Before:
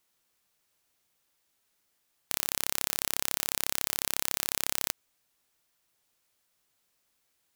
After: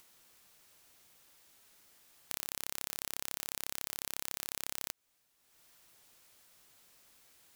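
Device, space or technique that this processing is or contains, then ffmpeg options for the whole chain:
upward and downward compression: -af "acompressor=mode=upward:threshold=-52dB:ratio=2.5,acompressor=threshold=-34dB:ratio=3"

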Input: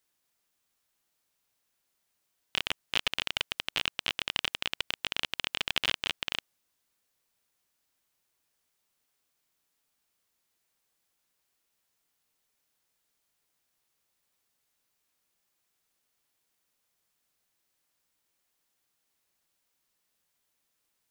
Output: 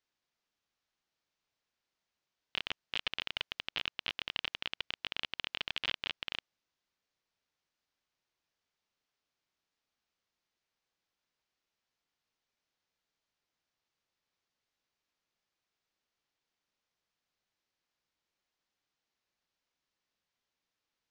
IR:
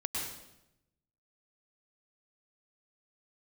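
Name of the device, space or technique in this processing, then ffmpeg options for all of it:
synthesiser wavefolder: -af "aeval=exprs='0.251*(abs(mod(val(0)/0.251+3,4)-2)-1)':c=same,lowpass=6.2k,lowpass=f=6.6k:w=0.5412,lowpass=f=6.6k:w=1.3066,volume=-5dB"

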